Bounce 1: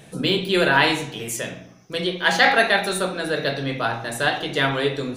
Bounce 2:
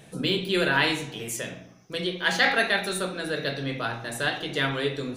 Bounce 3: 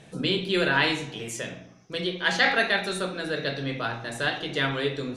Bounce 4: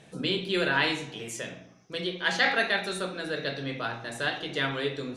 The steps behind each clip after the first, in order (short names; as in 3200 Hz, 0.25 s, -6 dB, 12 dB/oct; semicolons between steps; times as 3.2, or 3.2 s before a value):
dynamic EQ 790 Hz, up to -5 dB, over -33 dBFS, Q 1.3; gain -4 dB
LPF 7800 Hz 12 dB/oct
low shelf 110 Hz -5.5 dB; gain -2.5 dB